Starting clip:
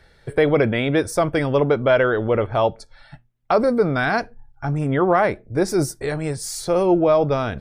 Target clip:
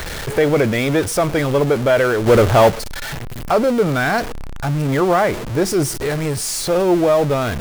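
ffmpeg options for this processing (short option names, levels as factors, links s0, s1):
-filter_complex "[0:a]aeval=exprs='val(0)+0.5*0.0841*sgn(val(0))':c=same,asplit=3[s0][s1][s2];[s0]afade=t=out:st=2.26:d=0.02[s3];[s1]acontrast=83,afade=t=in:st=2.26:d=0.02,afade=t=out:st=2.69:d=0.02[s4];[s2]afade=t=in:st=2.69:d=0.02[s5];[s3][s4][s5]amix=inputs=3:normalize=0"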